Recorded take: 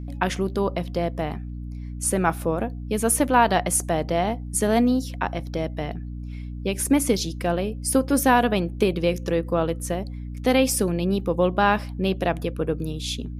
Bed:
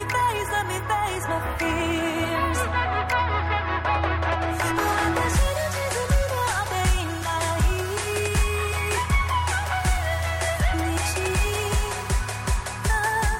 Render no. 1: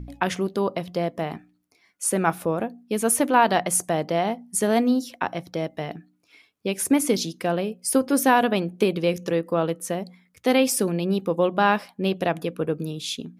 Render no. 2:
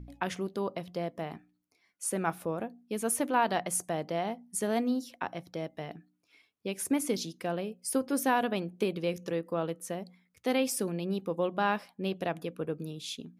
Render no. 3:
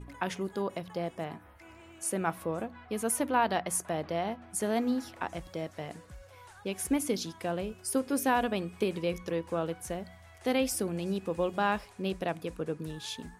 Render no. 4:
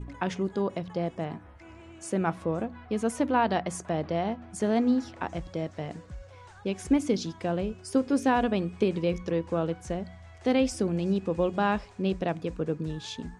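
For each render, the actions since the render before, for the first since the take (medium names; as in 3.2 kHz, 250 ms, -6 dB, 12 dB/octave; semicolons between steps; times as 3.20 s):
de-hum 60 Hz, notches 5
trim -9 dB
add bed -28.5 dB
low-pass 7.7 kHz 24 dB/octave; bass shelf 470 Hz +7.5 dB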